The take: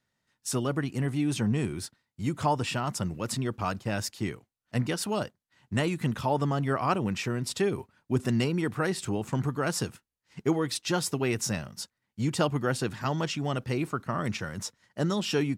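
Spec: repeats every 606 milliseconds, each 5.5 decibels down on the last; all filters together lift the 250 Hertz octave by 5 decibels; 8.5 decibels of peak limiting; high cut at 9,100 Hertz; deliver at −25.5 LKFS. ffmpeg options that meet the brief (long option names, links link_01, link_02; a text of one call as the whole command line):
ffmpeg -i in.wav -af "lowpass=9100,equalizer=frequency=250:width_type=o:gain=6.5,alimiter=limit=-18.5dB:level=0:latency=1,aecho=1:1:606|1212|1818|2424|3030|3636|4242:0.531|0.281|0.149|0.079|0.0419|0.0222|0.0118,volume=3dB" out.wav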